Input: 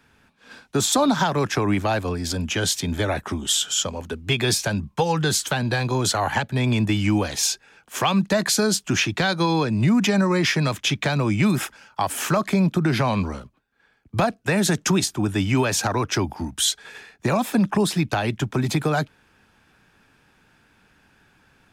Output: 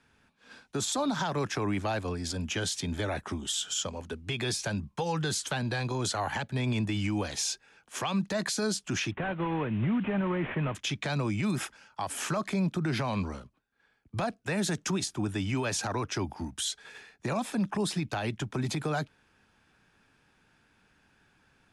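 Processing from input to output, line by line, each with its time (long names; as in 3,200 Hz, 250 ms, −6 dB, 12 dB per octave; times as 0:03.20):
0:09.11–0:10.75: variable-slope delta modulation 16 kbit/s
whole clip: elliptic low-pass filter 11,000 Hz, stop band 50 dB; brickwall limiter −15 dBFS; level −6.5 dB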